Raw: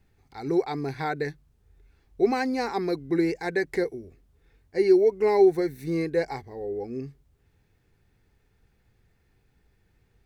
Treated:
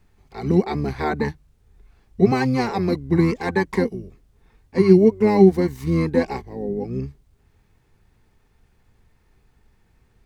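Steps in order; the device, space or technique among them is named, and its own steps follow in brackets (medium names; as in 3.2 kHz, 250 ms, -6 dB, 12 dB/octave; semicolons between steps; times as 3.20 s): octave pedal (harmony voices -12 st -1 dB); trim +3.5 dB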